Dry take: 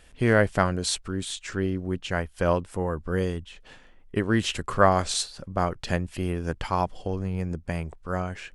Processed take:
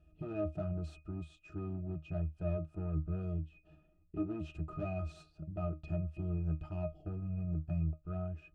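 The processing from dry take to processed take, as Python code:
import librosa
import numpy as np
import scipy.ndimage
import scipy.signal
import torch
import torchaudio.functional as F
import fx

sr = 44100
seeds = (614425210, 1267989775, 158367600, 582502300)

y = fx.peak_eq(x, sr, hz=1600.0, db=-8.5, octaves=1.9)
y = np.clip(10.0 ** (27.5 / 20.0) * y, -1.0, 1.0) / 10.0 ** (27.5 / 20.0)
y = fx.octave_resonator(y, sr, note='D#', decay_s=0.17)
y = y * 10.0 ** (4.5 / 20.0)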